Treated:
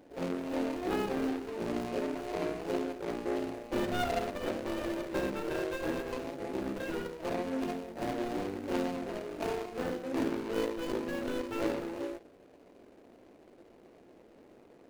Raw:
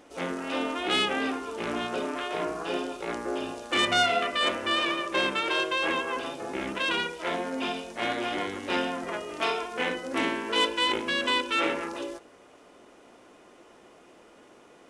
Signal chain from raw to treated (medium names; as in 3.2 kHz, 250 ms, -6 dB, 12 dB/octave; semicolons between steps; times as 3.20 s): median filter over 41 samples